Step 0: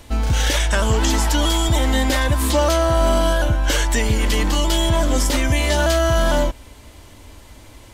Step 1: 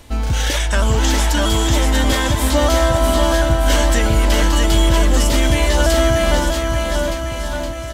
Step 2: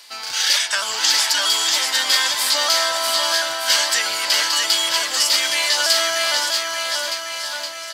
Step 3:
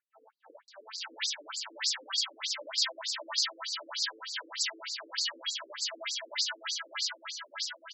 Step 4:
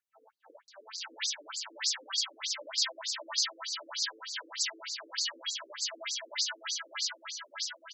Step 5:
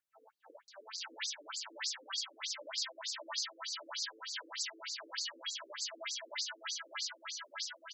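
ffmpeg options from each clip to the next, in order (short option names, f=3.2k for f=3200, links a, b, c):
-af "aecho=1:1:640|1216|1734|2201|2621:0.631|0.398|0.251|0.158|0.1"
-af "highpass=1.3k,equalizer=f=4.7k:w=3.7:g=13,volume=2.5dB"
-filter_complex "[0:a]acrossover=split=830[a][b];[b]adelay=680[c];[a][c]amix=inputs=2:normalize=0,afftfilt=real='re*between(b*sr/1024,350*pow(5700/350,0.5+0.5*sin(2*PI*3.3*pts/sr))/1.41,350*pow(5700/350,0.5+0.5*sin(2*PI*3.3*pts/sr))*1.41)':imag='im*between(b*sr/1024,350*pow(5700/350,0.5+0.5*sin(2*PI*3.3*pts/sr))/1.41,350*pow(5700/350,0.5+0.5*sin(2*PI*3.3*pts/sr))*1.41)':win_size=1024:overlap=0.75,volume=-9dB"
-af "equalizer=f=6.2k:w=4.9:g=5,volume=-1.5dB"
-af "acompressor=threshold=-39dB:ratio=2,volume=-1dB"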